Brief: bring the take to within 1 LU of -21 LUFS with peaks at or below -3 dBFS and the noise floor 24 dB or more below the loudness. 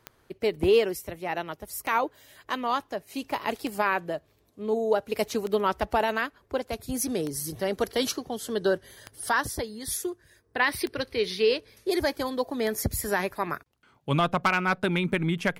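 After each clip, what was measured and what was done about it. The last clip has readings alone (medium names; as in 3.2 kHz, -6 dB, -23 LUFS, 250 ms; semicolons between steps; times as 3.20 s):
clicks found 9; loudness -28.0 LUFS; peak level -12.0 dBFS; loudness target -21.0 LUFS
-> de-click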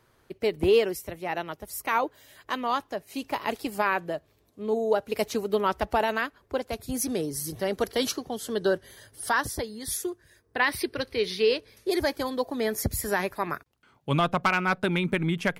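clicks found 0; loudness -28.0 LUFS; peak level -12.0 dBFS; loudness target -21.0 LUFS
-> trim +7 dB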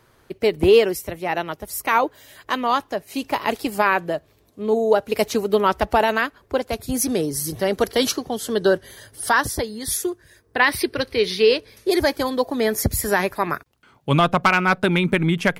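loudness -21.0 LUFS; peak level -5.0 dBFS; noise floor -58 dBFS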